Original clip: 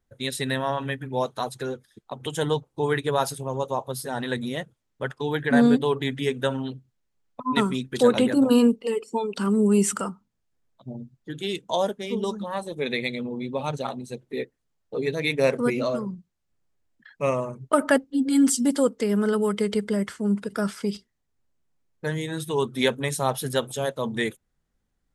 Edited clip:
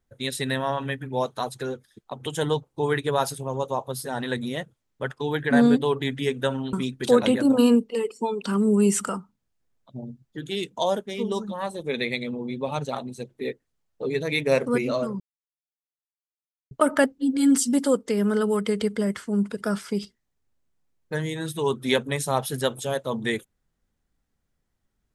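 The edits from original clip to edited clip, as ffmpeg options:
-filter_complex "[0:a]asplit=4[s0][s1][s2][s3];[s0]atrim=end=6.732[s4];[s1]atrim=start=7.648:end=16.12,asetpts=PTS-STARTPTS,afade=t=out:st=8.468:d=0.004:c=hsin[s5];[s2]atrim=start=16.12:end=17.63,asetpts=PTS-STARTPTS,volume=0[s6];[s3]atrim=start=17.63,asetpts=PTS-STARTPTS,afade=t=in:d=0.004:c=hsin[s7];[s5][s6][s7]concat=n=3:v=0:a=1[s8];[s4][s8]acrossfade=d=0.004:c1=hsin:c2=hsin"

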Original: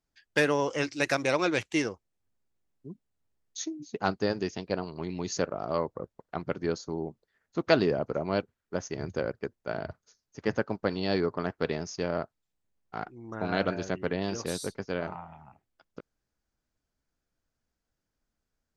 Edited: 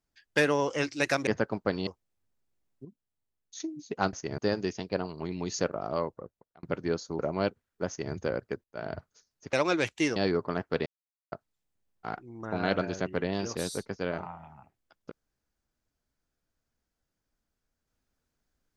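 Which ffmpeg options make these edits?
-filter_complex "[0:a]asplit=14[s0][s1][s2][s3][s4][s5][s6][s7][s8][s9][s10][s11][s12][s13];[s0]atrim=end=1.272[s14];[s1]atrim=start=10.448:end=11.052[s15];[s2]atrim=start=1.898:end=2.882[s16];[s3]atrim=start=2.878:end=3.632,asetpts=PTS-STARTPTS,volume=0.422[s17];[s4]atrim=start=3.628:end=4.162[s18];[s5]atrim=start=8.798:end=9.052[s19];[s6]atrim=start=4.158:end=6.41,asetpts=PTS-STARTPTS,afade=t=out:st=1.502:d=0.75[s20];[s7]atrim=start=6.41:end=6.972,asetpts=PTS-STARTPTS,afade=t=in:d=0.004:c=hsin[s21];[s8]atrim=start=8.108:end=9.56,asetpts=PTS-STARTPTS,afade=t=out:st=1.448:d=0.004:c=hsin:silence=0.0891251[s22];[s9]atrim=start=9.56:end=10.452,asetpts=PTS-STARTPTS,afade=t=in:d=0.29:silence=0.0891251[s23];[s10]atrim=start=1.268:end=1.902[s24];[s11]atrim=start=11.048:end=11.75,asetpts=PTS-STARTPTS,afade=t=out:st=0.698:d=0.004:c=hsin[s25];[s12]atrim=start=11.75:end=12.21,asetpts=PTS-STARTPTS,volume=0[s26];[s13]atrim=start=12.21,asetpts=PTS-STARTPTS,afade=t=in:d=0.004:c=hsin[s27];[s14][s15]acrossfade=d=0.004:c1=hsin:c2=hsin[s28];[s28][s16]acrossfade=d=0.004:c1=hsin:c2=hsin[s29];[s29][s17]acrossfade=d=0.004:c1=hsin:c2=hsin[s30];[s30][s18]acrossfade=d=0.004:c1=hsin:c2=hsin[s31];[s31][s19]acrossfade=d=0.004:c1=hsin:c2=hsin[s32];[s20][s21]concat=n=2:v=0:a=1[s33];[s32][s33]acrossfade=d=0.004:c1=hsin:c2=hsin[s34];[s22][s23]concat=n=2:v=0:a=1[s35];[s34][s35]acrossfade=d=0.004:c1=hsin:c2=hsin[s36];[s36][s24]acrossfade=d=0.004:c1=hsin:c2=hsin[s37];[s25][s26][s27]concat=n=3:v=0:a=1[s38];[s37][s38]acrossfade=d=0.004:c1=hsin:c2=hsin"

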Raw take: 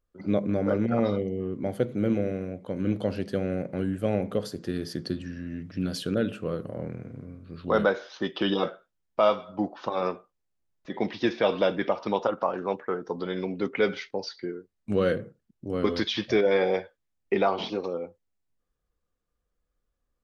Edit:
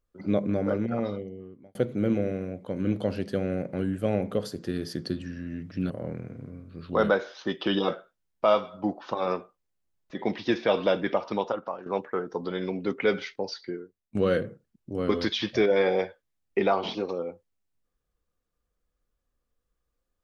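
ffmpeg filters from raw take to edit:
-filter_complex "[0:a]asplit=5[s0][s1][s2][s3][s4];[s0]atrim=end=1.75,asetpts=PTS-STARTPTS,afade=t=out:st=0.49:d=1.26[s5];[s1]atrim=start=1.75:end=5.902,asetpts=PTS-STARTPTS,afade=t=in:d=0.004:c=hsin[s6];[s2]atrim=start=6.648:end=12.61,asetpts=PTS-STARTPTS,afade=t=out:st=5.362:d=0.6:silence=0.237137[s7];[s3]atrim=start=12.61:end=14.9,asetpts=PTS-STARTPTS,afade=t=in:d=0.004:c=hsin:silence=0.237137,afade=t=out:st=1.8:d=0.49:silence=0.177828[s8];[s4]atrim=start=14.9,asetpts=PTS-STARTPTS,afade=t=in:d=0.004:c=hsin:silence=0.177828[s9];[s5][s6]concat=n=2:v=0:a=1[s10];[s7][s8][s9]concat=n=3:v=0:a=1[s11];[s10][s11]acrossfade=d=0.004:c1=hsin:c2=hsin"

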